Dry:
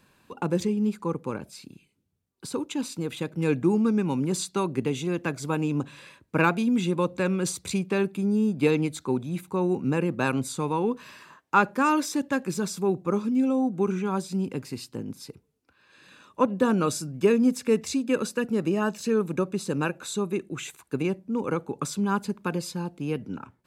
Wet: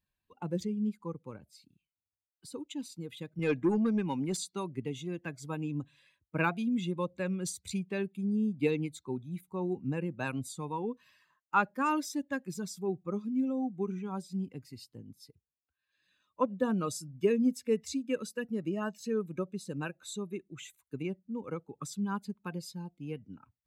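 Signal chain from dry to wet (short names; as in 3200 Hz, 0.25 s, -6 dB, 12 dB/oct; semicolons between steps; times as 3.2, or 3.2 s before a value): per-bin expansion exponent 1.5; 3.39–4.37 overdrive pedal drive 17 dB, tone 3700 Hz, clips at -13 dBFS; gain -5 dB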